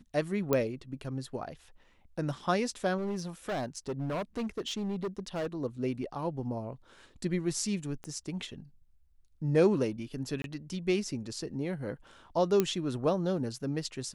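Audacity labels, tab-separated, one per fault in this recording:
0.530000	0.530000	pop -13 dBFS
2.970000	5.470000	clipped -30 dBFS
8.040000	8.040000	pop -28 dBFS
10.420000	10.440000	gap 22 ms
12.600000	12.600000	pop -12 dBFS

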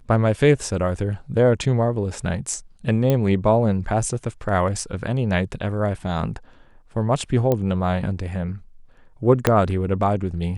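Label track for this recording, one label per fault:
3.100000	3.100000	pop -8 dBFS
7.520000	7.520000	pop -9 dBFS
9.470000	9.470000	pop -2 dBFS

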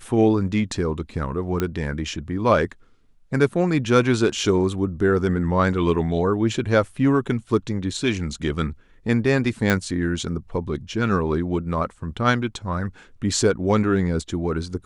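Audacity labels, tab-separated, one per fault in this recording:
1.600000	1.600000	pop -10 dBFS
9.700000	9.700000	pop -6 dBFS

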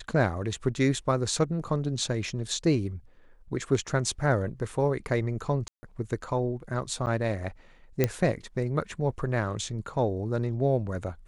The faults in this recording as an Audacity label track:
5.680000	5.830000	gap 0.15 s
7.060000	7.070000	gap 9.3 ms
8.040000	8.040000	pop -9 dBFS

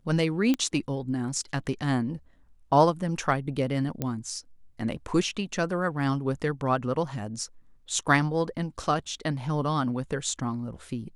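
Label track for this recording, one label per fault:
0.540000	0.540000	pop -14 dBFS
4.020000	4.020000	pop -15 dBFS

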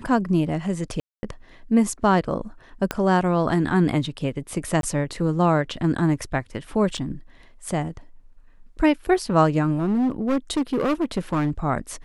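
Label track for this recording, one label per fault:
1.000000	1.230000	gap 0.23 s
2.910000	2.910000	pop -9 dBFS
4.810000	4.830000	gap 22 ms
6.970000	6.980000	gap 6.7 ms
9.780000	11.510000	clipped -18 dBFS

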